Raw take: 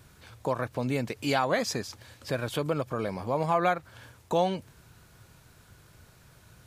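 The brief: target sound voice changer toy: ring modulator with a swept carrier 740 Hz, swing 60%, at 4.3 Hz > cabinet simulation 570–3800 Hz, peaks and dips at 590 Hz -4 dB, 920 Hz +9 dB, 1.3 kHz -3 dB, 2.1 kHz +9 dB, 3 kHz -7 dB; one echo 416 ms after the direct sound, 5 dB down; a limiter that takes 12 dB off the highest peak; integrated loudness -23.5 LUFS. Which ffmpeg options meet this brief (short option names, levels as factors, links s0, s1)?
-af "alimiter=level_in=1.06:limit=0.0631:level=0:latency=1,volume=0.944,aecho=1:1:416:0.562,aeval=exprs='val(0)*sin(2*PI*740*n/s+740*0.6/4.3*sin(2*PI*4.3*n/s))':c=same,highpass=570,equalizer=f=590:t=q:w=4:g=-4,equalizer=f=920:t=q:w=4:g=9,equalizer=f=1300:t=q:w=4:g=-3,equalizer=f=2100:t=q:w=4:g=9,equalizer=f=3000:t=q:w=4:g=-7,lowpass=f=3800:w=0.5412,lowpass=f=3800:w=1.3066,volume=4.73"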